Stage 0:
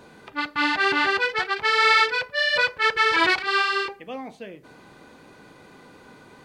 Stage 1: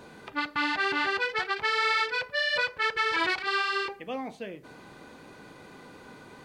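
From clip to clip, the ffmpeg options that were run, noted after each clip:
-af "acompressor=threshold=0.0447:ratio=2.5"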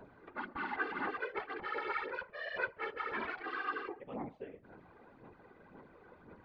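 -af "aphaser=in_gain=1:out_gain=1:delay=2.6:decay=0.51:speed=1.9:type=sinusoidal,lowpass=1600,afftfilt=real='hypot(re,im)*cos(2*PI*random(0))':imag='hypot(re,im)*sin(2*PI*random(1))':win_size=512:overlap=0.75,volume=0.596"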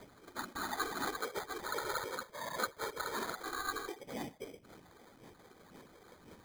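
-af "acrusher=samples=16:mix=1:aa=0.000001"

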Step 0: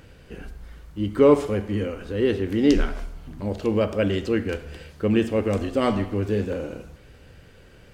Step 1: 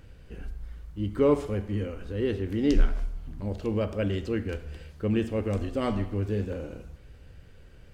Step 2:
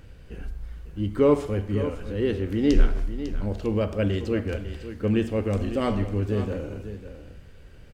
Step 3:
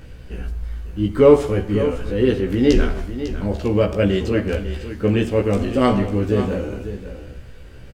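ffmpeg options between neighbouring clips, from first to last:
-af "lowshelf=f=100:g=12,volume=0.422"
-af "aecho=1:1:550:0.266,volume=1.41"
-filter_complex "[0:a]asplit=2[s0][s1];[s1]adelay=16,volume=0.708[s2];[s0][s2]amix=inputs=2:normalize=0,volume=2"

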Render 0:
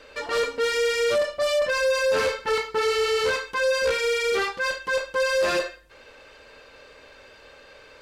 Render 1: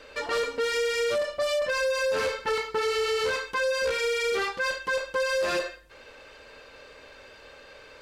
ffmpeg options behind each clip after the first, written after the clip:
-af "acompressor=threshold=0.0631:ratio=6"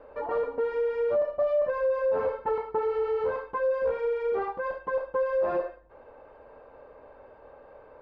-af "lowpass=f=840:t=q:w=2,volume=0.794"

